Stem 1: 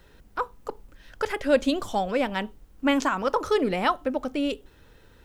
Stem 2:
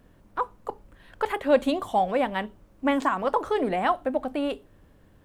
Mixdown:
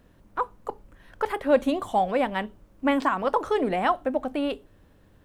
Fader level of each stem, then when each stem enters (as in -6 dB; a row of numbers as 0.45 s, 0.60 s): -14.0 dB, -1.0 dB; 0.00 s, 0.00 s